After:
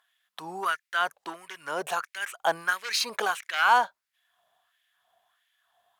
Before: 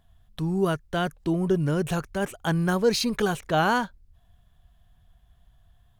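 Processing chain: one-sided clip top -19 dBFS; LFO high-pass sine 1.5 Hz 670–2100 Hz

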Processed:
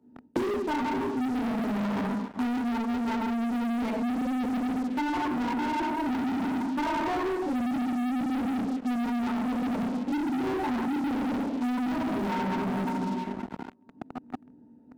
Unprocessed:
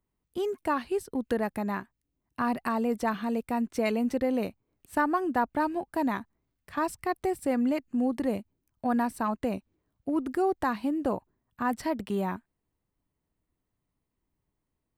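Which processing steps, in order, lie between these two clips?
local Wiener filter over 41 samples; reverberation RT60 1.4 s, pre-delay 13 ms, DRR -8.5 dB; in parallel at -4 dB: saturation -15.5 dBFS, distortion -14 dB; on the sum: high-pass 190 Hz 12 dB/octave; small resonant body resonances 250/900 Hz, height 18 dB, ringing for 80 ms; dynamic bell 280 Hz, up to +4 dB, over -15 dBFS, Q 6.2; reverse; compression 10:1, threshold -26 dBFS, peak gain reduction 31.5 dB; reverse; waveshaping leveller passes 5; three bands compressed up and down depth 100%; trim -9 dB

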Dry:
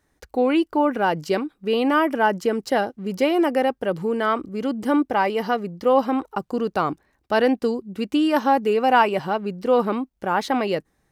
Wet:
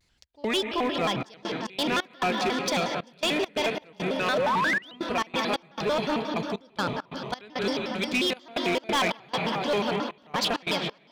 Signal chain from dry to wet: FFT filter 130 Hz 0 dB, 290 Hz -9 dB, 1.5 kHz -5 dB, 3.6 kHz +12 dB, 11 kHz -7 dB; echo whose repeats swap between lows and highs 198 ms, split 2.2 kHz, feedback 78%, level -8 dB; reverberation RT60 3.1 s, pre-delay 106 ms, DRR 8 dB; painted sound rise, 4.33–4.96 s, 470–3900 Hz -24 dBFS; trance gate "xx..xxxxxxx..xx." 135 bpm -24 dB; hard clipper -20.5 dBFS, distortion -12 dB; vibrato with a chosen wave square 5.6 Hz, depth 250 cents

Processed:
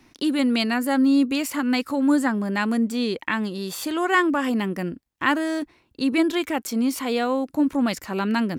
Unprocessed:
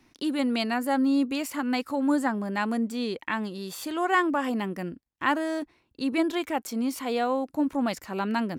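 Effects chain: dynamic bell 760 Hz, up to -6 dB, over -38 dBFS, Q 1.2; trim +6 dB

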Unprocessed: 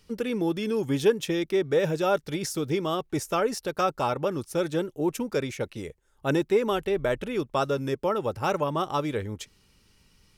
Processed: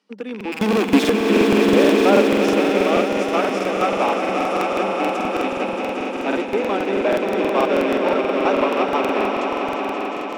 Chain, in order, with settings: rattle on loud lows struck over -35 dBFS, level -20 dBFS; in parallel at -7 dB: hard clipper -22.5 dBFS, distortion -11 dB; on the sum: distance through air 52 m; 0.52–1.08 s: power-law waveshaper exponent 0.35; rippled Chebyshev high-pass 190 Hz, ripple 6 dB; treble shelf 5.6 kHz -5.5 dB; echo with a slow build-up 89 ms, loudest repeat 8, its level -8 dB; crackling interface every 0.16 s, samples 2048, repeat, from 0.36 s; upward expansion 1.5:1, over -36 dBFS; trim +6.5 dB

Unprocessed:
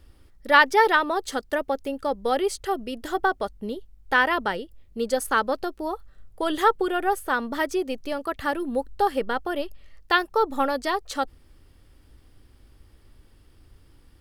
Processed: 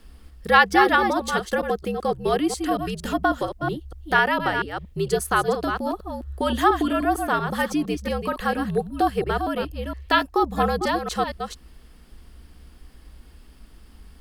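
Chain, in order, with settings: chunks repeated in reverse 231 ms, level -7.5 dB; in parallel at +0.5 dB: compression, threshold -37 dBFS, peak gain reduction 24 dB; on the sum: frequency shift -71 Hz; 9.10–9.62 s: three bands expanded up and down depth 40%

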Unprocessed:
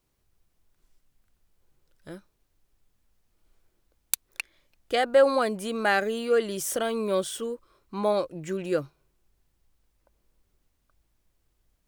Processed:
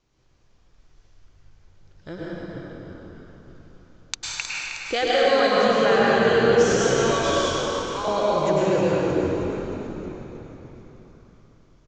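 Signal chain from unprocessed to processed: steep low-pass 7 kHz 72 dB/octave; 4.96–5.47 s: treble shelf 2.3 kHz +11.5 dB; 6.78–8.08 s: high-pass 740 Hz 24 dB/octave; compression 3:1, threshold -30 dBFS, peak gain reduction 13 dB; frequency-shifting echo 313 ms, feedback 61%, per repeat -51 Hz, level -8 dB; reverberation RT60 3.4 s, pre-delay 93 ms, DRR -7 dB; trim +5 dB

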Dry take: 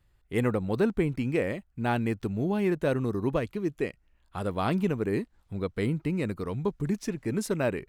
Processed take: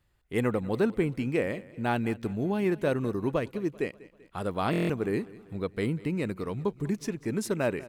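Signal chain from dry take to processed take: bass shelf 81 Hz -8.5 dB; on a send: feedback delay 194 ms, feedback 51%, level -20 dB; on the sum: buffer glitch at 4.71 s, samples 1024, times 7

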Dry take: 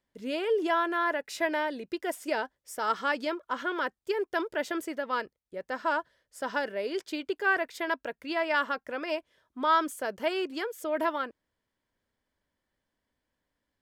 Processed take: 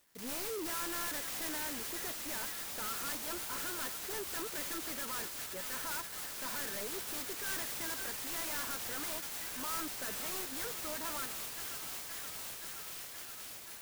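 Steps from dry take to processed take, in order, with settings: amplifier tone stack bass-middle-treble 6-0-2; feedback echo behind a high-pass 523 ms, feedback 70%, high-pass 4.5 kHz, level -4 dB; transient shaper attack -6 dB, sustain +1 dB; bass shelf 410 Hz -9 dB; overdrive pedal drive 37 dB, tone 6.9 kHz, clips at -38.5 dBFS; sampling jitter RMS 0.12 ms; trim +6.5 dB

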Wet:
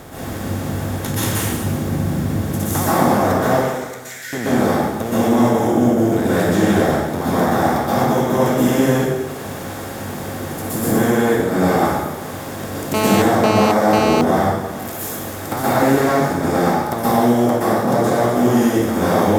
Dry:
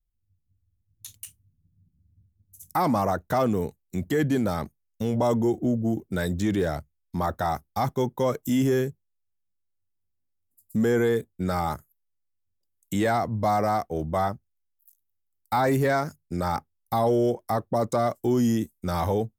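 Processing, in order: spectral levelling over time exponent 0.4; compression 3:1, threshold -36 dBFS, peak gain reduction 16.5 dB; 3.46–4.33 s: rippled Chebyshev high-pass 1.4 kHz, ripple 6 dB; plate-style reverb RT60 1.3 s, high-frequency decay 0.95×, pre-delay 110 ms, DRR -10 dB; 12.94–14.21 s: mobile phone buzz -26 dBFS; trim +8 dB

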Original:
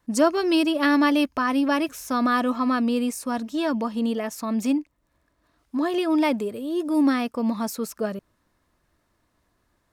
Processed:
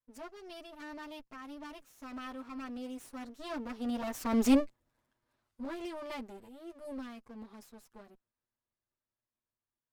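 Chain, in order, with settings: comb filter that takes the minimum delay 8 ms; Doppler pass-by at 4.48 s, 14 m/s, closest 3 m

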